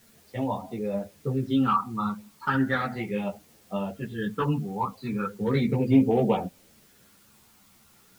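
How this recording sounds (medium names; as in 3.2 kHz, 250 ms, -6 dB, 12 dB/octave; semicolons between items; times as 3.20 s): phasing stages 12, 0.36 Hz, lowest notch 540–1500 Hz; a quantiser's noise floor 10-bit, dither triangular; a shimmering, thickened sound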